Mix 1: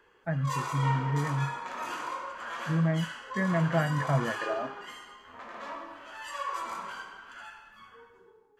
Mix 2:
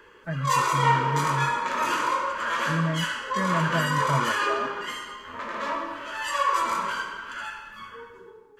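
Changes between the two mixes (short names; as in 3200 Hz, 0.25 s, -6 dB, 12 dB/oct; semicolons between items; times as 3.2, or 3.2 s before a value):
background +11.0 dB; master: add Butterworth band-stop 750 Hz, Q 4.2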